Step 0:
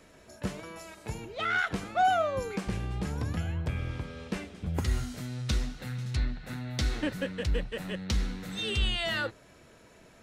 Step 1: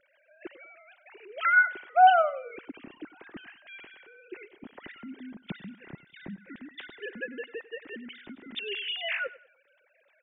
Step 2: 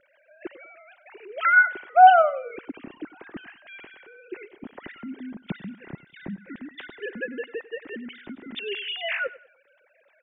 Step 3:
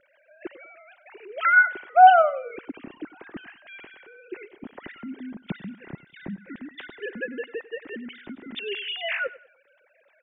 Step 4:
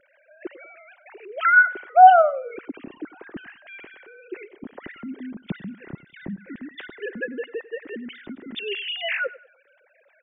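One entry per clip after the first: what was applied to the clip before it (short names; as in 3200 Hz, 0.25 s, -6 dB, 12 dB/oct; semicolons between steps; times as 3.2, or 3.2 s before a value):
sine-wave speech; band shelf 760 Hz -9 dB; feedback echo 97 ms, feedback 32%, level -18 dB; gain +8 dB
high shelf 3100 Hz -10 dB; gain +6 dB
nothing audible
formant sharpening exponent 1.5; gain +2 dB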